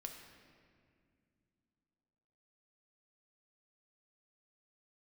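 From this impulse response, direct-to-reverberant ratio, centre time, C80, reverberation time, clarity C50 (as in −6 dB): 2.5 dB, 46 ms, 6.5 dB, non-exponential decay, 5.5 dB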